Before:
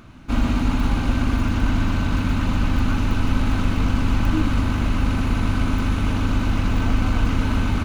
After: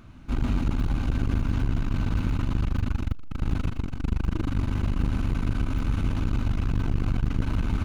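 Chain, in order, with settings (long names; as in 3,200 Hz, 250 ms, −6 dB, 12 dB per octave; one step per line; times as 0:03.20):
low-shelf EQ 160 Hz +7 dB
saturating transformer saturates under 150 Hz
level −7 dB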